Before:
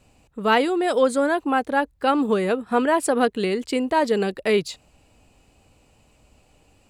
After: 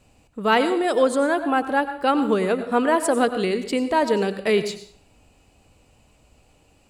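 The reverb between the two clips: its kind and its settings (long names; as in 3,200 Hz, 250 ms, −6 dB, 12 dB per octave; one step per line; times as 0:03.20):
dense smooth reverb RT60 0.53 s, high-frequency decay 0.8×, pre-delay 80 ms, DRR 10.5 dB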